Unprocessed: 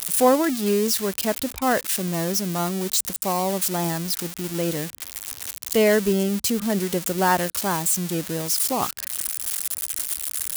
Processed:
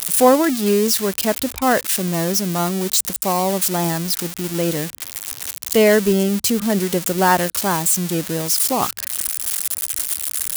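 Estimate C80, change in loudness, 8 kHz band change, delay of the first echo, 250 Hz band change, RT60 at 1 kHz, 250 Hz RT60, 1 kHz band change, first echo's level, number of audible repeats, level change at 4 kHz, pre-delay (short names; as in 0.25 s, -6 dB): none, +4.5 dB, +4.5 dB, none, +4.5 dB, none, none, +4.5 dB, none, none, +4.5 dB, none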